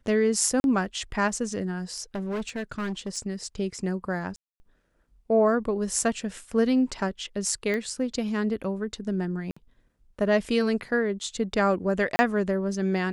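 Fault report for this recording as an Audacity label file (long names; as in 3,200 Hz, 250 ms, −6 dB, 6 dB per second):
0.600000	0.640000	drop-out 41 ms
2.150000	3.180000	clipping −27 dBFS
4.360000	4.600000	drop-out 240 ms
7.740000	7.740000	click −18 dBFS
9.510000	9.560000	drop-out 55 ms
12.160000	12.190000	drop-out 30 ms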